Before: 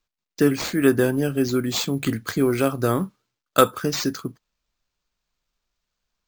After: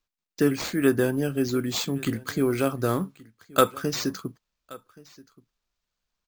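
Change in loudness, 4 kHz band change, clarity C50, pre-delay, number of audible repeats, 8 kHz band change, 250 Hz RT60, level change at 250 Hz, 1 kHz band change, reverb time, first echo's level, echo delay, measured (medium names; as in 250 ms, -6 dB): -3.5 dB, -3.5 dB, no reverb, no reverb, 1, -3.5 dB, no reverb, -3.5 dB, -3.5 dB, no reverb, -22.5 dB, 1126 ms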